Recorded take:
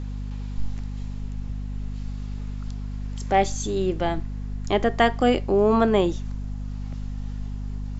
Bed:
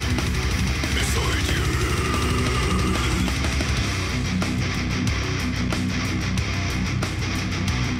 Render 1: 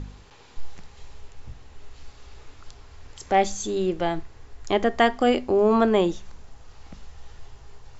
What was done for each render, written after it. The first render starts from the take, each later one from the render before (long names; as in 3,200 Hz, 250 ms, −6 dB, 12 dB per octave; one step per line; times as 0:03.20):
hum removal 50 Hz, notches 5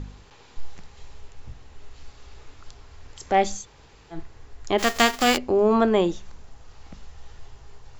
0:03.61–0:04.15: fill with room tone, crossfade 0.10 s
0:04.78–0:05.36: spectral envelope flattened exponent 0.3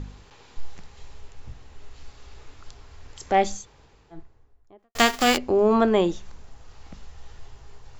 0:03.28–0:04.95: fade out and dull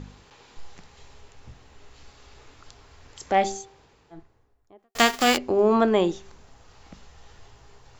low-shelf EQ 66 Hz −11.5 dB
hum removal 390.6 Hz, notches 2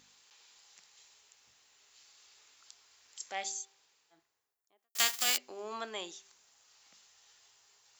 first difference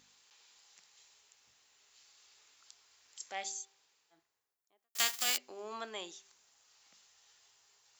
level −2.5 dB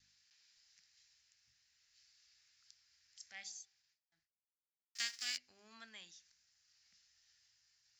noise gate with hold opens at −59 dBFS
drawn EQ curve 100 Hz 0 dB, 230 Hz −11 dB, 360 Hz −26 dB, 700 Hz −22 dB, 1,100 Hz −21 dB, 1,700 Hz −5 dB, 3,400 Hz −11 dB, 5,100 Hz −2 dB, 13,000 Hz −29 dB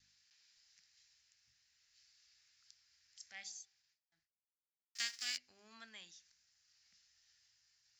no processing that can be heard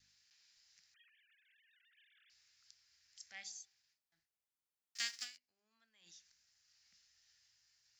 0:00.94–0:02.30: three sine waves on the formant tracks
0:05.23–0:06.08: duck −20.5 dB, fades 0.33 s exponential